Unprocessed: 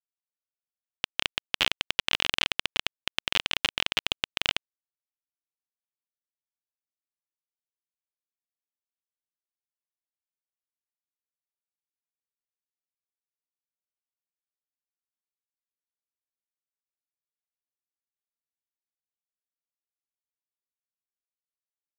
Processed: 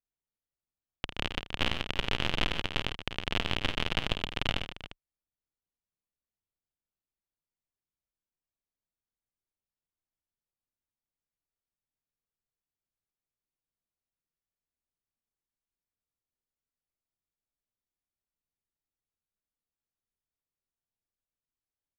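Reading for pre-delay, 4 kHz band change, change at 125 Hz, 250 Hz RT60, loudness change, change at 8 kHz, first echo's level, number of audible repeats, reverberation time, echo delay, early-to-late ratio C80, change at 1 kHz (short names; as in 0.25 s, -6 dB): none, -6.5 dB, +10.0 dB, none, -5.0 dB, -10.5 dB, -9.0 dB, 4, none, 51 ms, none, -1.0 dB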